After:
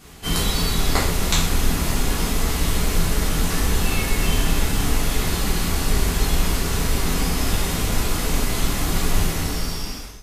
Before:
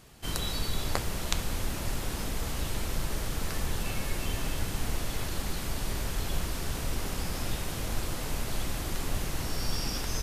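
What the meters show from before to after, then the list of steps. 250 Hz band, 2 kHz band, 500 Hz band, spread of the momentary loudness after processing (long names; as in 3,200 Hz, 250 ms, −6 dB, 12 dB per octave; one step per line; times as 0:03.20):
+12.5 dB, +11.0 dB, +10.5 dB, 2 LU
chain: fade-out on the ending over 1.05 s
reverb whose tail is shaped and stops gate 160 ms falling, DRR −7 dB
level +3.5 dB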